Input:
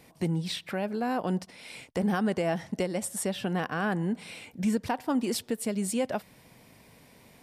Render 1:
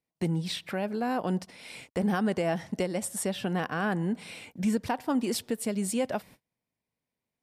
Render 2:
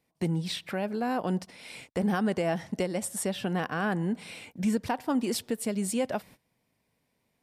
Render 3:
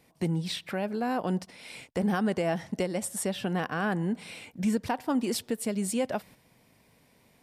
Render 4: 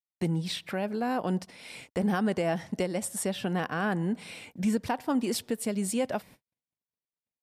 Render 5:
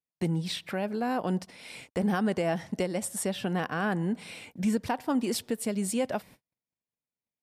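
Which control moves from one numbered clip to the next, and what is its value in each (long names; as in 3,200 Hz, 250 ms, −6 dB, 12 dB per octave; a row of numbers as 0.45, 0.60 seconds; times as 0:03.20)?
noise gate, range: −33, −20, −7, −59, −45 decibels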